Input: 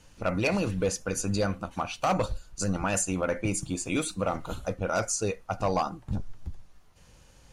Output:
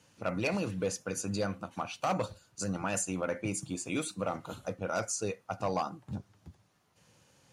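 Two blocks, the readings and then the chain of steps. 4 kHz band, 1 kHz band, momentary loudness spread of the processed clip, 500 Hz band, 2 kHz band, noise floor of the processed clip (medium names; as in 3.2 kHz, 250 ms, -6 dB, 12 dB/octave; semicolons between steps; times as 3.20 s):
-5.0 dB, -5.0 dB, 7 LU, -5.0 dB, -5.0 dB, -69 dBFS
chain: high-pass 100 Hz 24 dB/octave; trim -5 dB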